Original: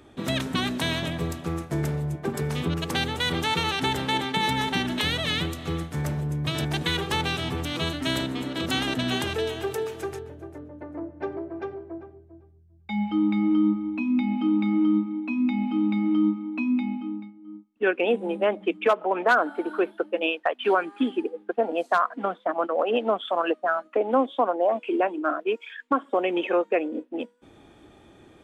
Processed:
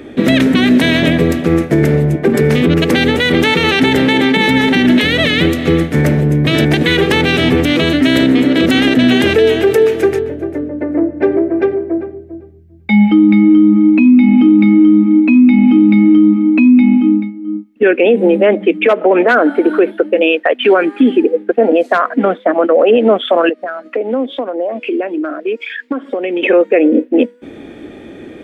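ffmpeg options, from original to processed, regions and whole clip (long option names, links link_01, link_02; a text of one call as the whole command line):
ffmpeg -i in.wav -filter_complex "[0:a]asettb=1/sr,asplit=3[link_01][link_02][link_03];[link_01]atrim=end=23.494[link_04];[link_02]atrim=start=23.49:end=26.43,asetpts=PTS-STARTPTS,afade=type=in:duration=0.004:curve=qsin,afade=type=out:start_time=2.936:duration=0.004:curve=qsin,equalizer=frequency=4800:width=2.3:gain=7.5,acompressor=threshold=-39dB:ratio=3:attack=3.2:release=140:knee=1:detection=peak[link_05];[link_03]atrim=start=26.426[link_06];[link_04][link_05]acrossfade=duration=0.004:curve1=hsin:curve2=qsin[link_07];[link_07][link_06]acrossfade=duration=0.004:curve1=qsin:curve2=hsin,equalizer=frequency=250:width_type=o:width=1:gain=10,equalizer=frequency=500:width_type=o:width=1:gain=9,equalizer=frequency=1000:width_type=o:width=1:gain=-6,equalizer=frequency=2000:width_type=o:width=1:gain=10,equalizer=frequency=8000:width_type=o:width=1:gain=-3,alimiter=level_in=12.5dB:limit=-1dB:release=50:level=0:latency=1,volume=-1dB" out.wav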